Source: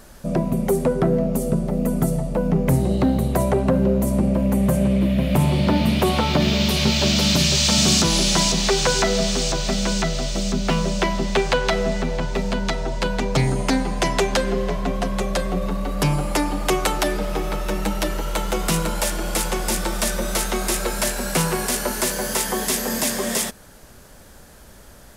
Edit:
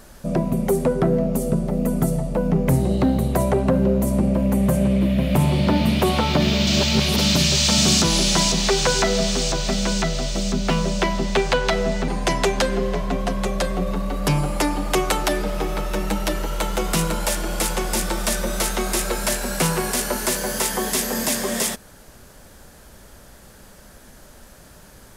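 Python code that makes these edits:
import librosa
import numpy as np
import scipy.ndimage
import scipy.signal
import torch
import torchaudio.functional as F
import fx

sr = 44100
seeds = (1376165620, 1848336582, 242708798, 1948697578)

y = fx.edit(x, sr, fx.reverse_span(start_s=6.67, length_s=0.51),
    fx.cut(start_s=12.08, length_s=1.75), tone=tone)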